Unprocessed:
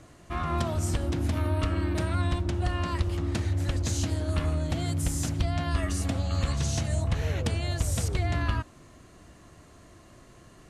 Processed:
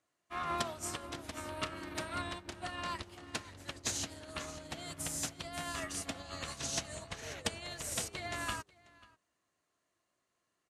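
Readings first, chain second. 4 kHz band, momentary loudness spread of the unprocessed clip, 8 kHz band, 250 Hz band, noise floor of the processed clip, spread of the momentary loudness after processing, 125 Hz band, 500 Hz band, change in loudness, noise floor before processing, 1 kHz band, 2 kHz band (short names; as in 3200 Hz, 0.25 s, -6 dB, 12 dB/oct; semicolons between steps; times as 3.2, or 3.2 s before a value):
-2.5 dB, 2 LU, -2.0 dB, -14.0 dB, -83 dBFS, 7 LU, -22.5 dB, -9.5 dB, -10.5 dB, -53 dBFS, -5.0 dB, -4.0 dB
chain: octaver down 1 oct, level -5 dB; HPF 870 Hz 6 dB/oct; echo 0.54 s -9 dB; upward expander 2.5:1, over -50 dBFS; gain +2 dB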